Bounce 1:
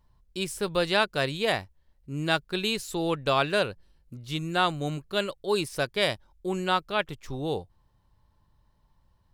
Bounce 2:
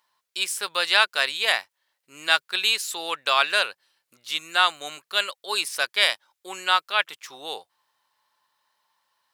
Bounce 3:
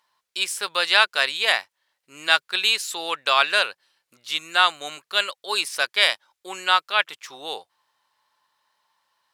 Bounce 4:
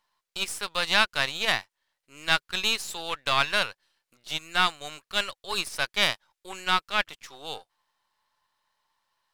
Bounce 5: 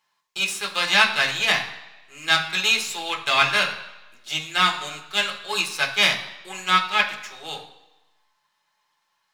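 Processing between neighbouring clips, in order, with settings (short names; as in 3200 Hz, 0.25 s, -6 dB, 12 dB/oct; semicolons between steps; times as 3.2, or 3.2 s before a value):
HPF 1200 Hz 12 dB/oct; gain +8.5 dB
high shelf 12000 Hz -8 dB; gain +2 dB
half-wave gain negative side -7 dB; gain -3 dB
reverb RT60 1.0 s, pre-delay 3 ms, DRR -1 dB; gain +1.5 dB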